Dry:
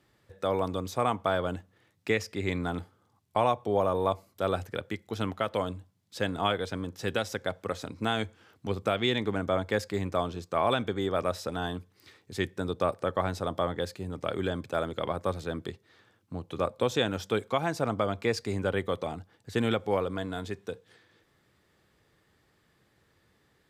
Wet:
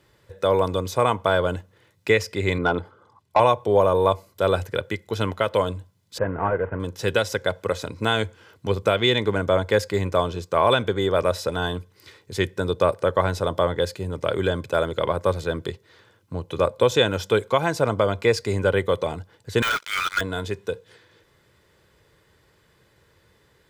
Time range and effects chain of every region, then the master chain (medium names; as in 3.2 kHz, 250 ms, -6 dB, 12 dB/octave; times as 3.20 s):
2.58–3.40 s: resonances exaggerated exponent 1.5 + overdrive pedal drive 16 dB, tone 3.9 kHz, clips at -14 dBFS
6.18–6.80 s: CVSD coder 16 kbps + low-pass 1.7 kHz 24 dB/octave
19.62–20.21 s: brick-wall FIR band-pass 1.2–11 kHz + distance through air 60 m + waveshaping leveller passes 5
whole clip: de-esser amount 65%; comb 2 ms, depth 41%; trim +7 dB